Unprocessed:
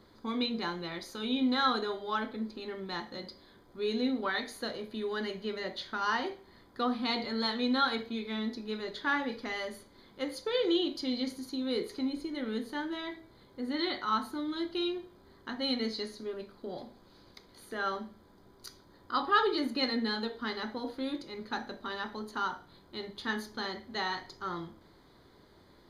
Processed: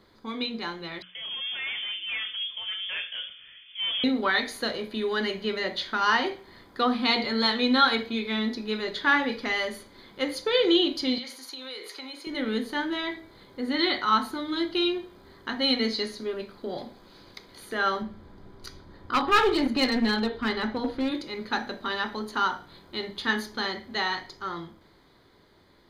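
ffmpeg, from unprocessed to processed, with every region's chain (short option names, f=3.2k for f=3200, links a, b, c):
-filter_complex "[0:a]asettb=1/sr,asplit=3[a][b][c];[a]atrim=end=1.024[d];[b]atrim=start=1.02:end=4.04,asetpts=PTS-STARTPTS,afade=t=in:d=0.004:c=qsin,afade=t=out:st=3.016:d=0.004:c=qsin,aeval=exprs='(tanh(70.8*val(0)+0.3)-tanh(0.3))/70.8':c=same,lowpass=f=3k:t=q:w=0.5098,lowpass=f=3k:t=q:w=0.6013,lowpass=f=3k:t=q:w=0.9,lowpass=f=3k:t=q:w=2.563,afreqshift=-3500[e];[c]atrim=start=4.036[f];[d][e]acrossfade=d=0.004:c1=hsin:c2=qsin[g];[g][f]acrossfade=d=0.004:c1=qsin:c2=hsin,asettb=1/sr,asplit=3[h][i][j];[h]atrim=end=11.184[k];[i]atrim=start=11.18:end=12.27,asetpts=PTS-STARTPTS,afade=t=in:d=0.004:c=qsin,afade=t=out:st=1.086:d=0.004:c=qsin,highpass=720,acompressor=threshold=-43dB:ratio=6:attack=3.2:release=140:knee=1:detection=peak[l];[j]atrim=start=12.266[m];[k][l]acrossfade=d=0.004:c1=hsin:c2=qsin[n];[n][m]acrossfade=d=0.004:c1=qsin:c2=hsin,asettb=1/sr,asplit=3[o][p][q];[o]atrim=end=18.024[r];[p]atrim=start=18.02:end=21.12,asetpts=PTS-STARTPTS,afade=t=in:d=0.004:c=qsin,afade=t=out:st=3.096:d=0.004:c=qsin,lowpass=f=3.8k:p=1,lowshelf=f=160:g=11.5,aeval=exprs='clip(val(0),-1,0.0376)':c=same[s];[q]atrim=start=21.116[t];[r][s]acrossfade=d=0.004:c1=hsin:c2=qsin[u];[u][t]acrossfade=d=0.004:c1=qsin:c2=hsin,equalizer=f=2.5k:w=1.2:g=5,bandreject=f=60:t=h:w=6,bandreject=f=120:t=h:w=6,bandreject=f=180:t=h:w=6,bandreject=f=240:t=h:w=6,bandreject=f=300:t=h:w=6,dynaudnorm=f=320:g=13:m=6.5dB"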